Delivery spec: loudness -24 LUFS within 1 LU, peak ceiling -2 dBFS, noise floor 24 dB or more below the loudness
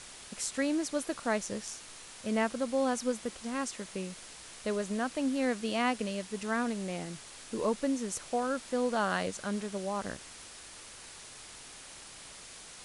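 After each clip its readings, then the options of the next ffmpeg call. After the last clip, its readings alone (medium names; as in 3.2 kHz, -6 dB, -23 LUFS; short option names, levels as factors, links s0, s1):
noise floor -49 dBFS; noise floor target -58 dBFS; loudness -33.5 LUFS; peak level -16.0 dBFS; loudness target -24.0 LUFS
-> -af "afftdn=nr=9:nf=-49"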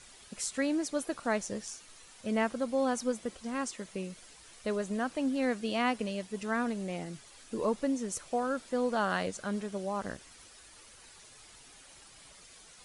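noise floor -55 dBFS; noise floor target -58 dBFS
-> -af "afftdn=nr=6:nf=-55"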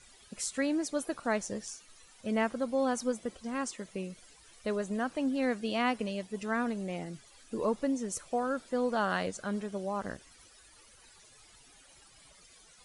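noise floor -59 dBFS; loudness -33.5 LUFS; peak level -16.5 dBFS; loudness target -24.0 LUFS
-> -af "volume=2.99"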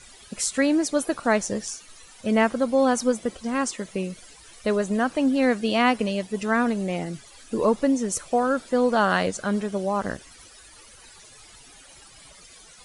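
loudness -24.0 LUFS; peak level -7.0 dBFS; noise floor -49 dBFS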